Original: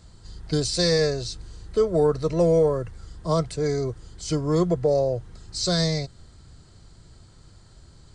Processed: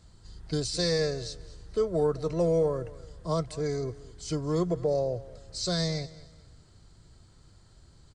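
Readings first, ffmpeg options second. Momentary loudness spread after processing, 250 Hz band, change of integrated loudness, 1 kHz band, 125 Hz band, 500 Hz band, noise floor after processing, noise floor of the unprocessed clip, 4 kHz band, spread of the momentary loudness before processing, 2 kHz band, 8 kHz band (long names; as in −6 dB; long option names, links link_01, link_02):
14 LU, −6.0 dB, −6.0 dB, −6.0 dB, −6.0 dB, −6.0 dB, −57 dBFS, −51 dBFS, −6.0 dB, 14 LU, −6.0 dB, −6.0 dB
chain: -af "aecho=1:1:216|432|648:0.112|0.0359|0.0115,volume=-6dB"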